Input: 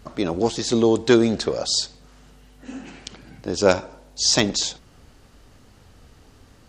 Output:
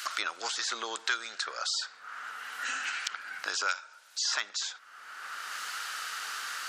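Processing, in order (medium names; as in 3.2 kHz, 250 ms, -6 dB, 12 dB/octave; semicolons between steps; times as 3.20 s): resonant high-pass 1.4 kHz, resonance Q 4.9; three bands compressed up and down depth 100%; trim -6.5 dB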